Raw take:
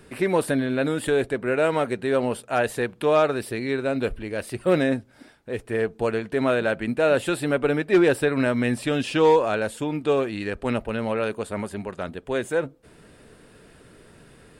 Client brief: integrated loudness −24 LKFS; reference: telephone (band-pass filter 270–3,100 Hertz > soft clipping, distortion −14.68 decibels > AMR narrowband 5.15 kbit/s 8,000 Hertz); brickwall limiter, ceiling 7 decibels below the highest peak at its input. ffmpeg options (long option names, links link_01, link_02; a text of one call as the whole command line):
ffmpeg -i in.wav -af "alimiter=limit=-16.5dB:level=0:latency=1,highpass=270,lowpass=3100,asoftclip=threshold=-21.5dB,volume=7.5dB" -ar 8000 -c:a libopencore_amrnb -b:a 5150 out.amr